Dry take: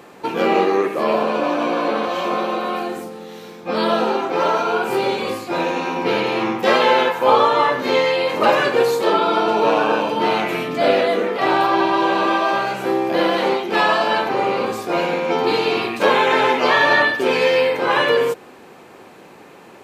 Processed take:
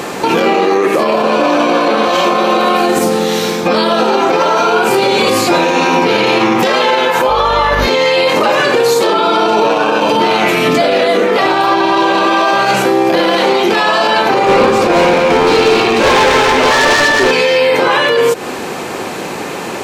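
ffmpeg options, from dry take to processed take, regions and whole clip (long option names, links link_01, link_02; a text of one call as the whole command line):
ffmpeg -i in.wav -filter_complex "[0:a]asettb=1/sr,asplit=3[link_01][link_02][link_03];[link_01]atrim=end=7.294[link_04];[link_02]atrim=start=7.29:end=7.87,asetpts=PTS-STARTPTS,afade=type=in:duration=0.004:curve=qsin,afade=type=out:start_time=0.576:duration=0.004:curve=qsin,highpass=440,equalizer=frequency=8000:width=6.7:gain=-13.5,aeval=exprs='val(0)+0.0398*(sin(2*PI*50*n/s)+sin(2*PI*2*50*n/s)/2+sin(2*PI*3*50*n/s)/3+sin(2*PI*4*50*n/s)/4+sin(2*PI*5*50*n/s)/5)':channel_layout=same[link_05];[link_03]atrim=start=7.866[link_06];[link_04][link_05]acrossfade=duration=0.004:curve1=hsin:curve2=qsin[link_07];[link_07][link_06]acrossfade=duration=0.004:curve1=qsin:curve2=hsin,asettb=1/sr,asplit=3[link_08][link_09][link_10];[link_08]atrim=end=14.464[link_11];[link_09]atrim=start=14.46:end=17.31,asetpts=PTS-STARTPTS,afade=type=in:duration=0.004:curve=qsin,afade=type=out:start_time=2.846:duration=0.004:curve=qsin,lowpass=frequency=2400:poles=1,asoftclip=type=hard:threshold=-18dB,aecho=1:1:232:0.501,atrim=end_sample=125685[link_12];[link_10]atrim=start=17.306[link_13];[link_11][link_12]acrossfade=duration=0.004:curve1=hsin:curve2=qsin[link_14];[link_14][link_13]acrossfade=duration=0.004:curve1=qsin:curve2=hsin,equalizer=frequency=6600:width=0.69:gain=6,acompressor=threshold=-24dB:ratio=6,alimiter=level_in=23dB:limit=-1dB:release=50:level=0:latency=1,volume=-2dB" out.wav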